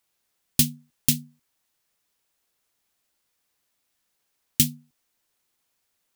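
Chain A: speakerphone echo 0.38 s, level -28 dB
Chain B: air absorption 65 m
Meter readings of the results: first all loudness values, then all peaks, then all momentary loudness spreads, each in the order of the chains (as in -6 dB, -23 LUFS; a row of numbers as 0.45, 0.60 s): -24.0, -30.0 LUFS; -1.5, -8.0 dBFS; 6, 7 LU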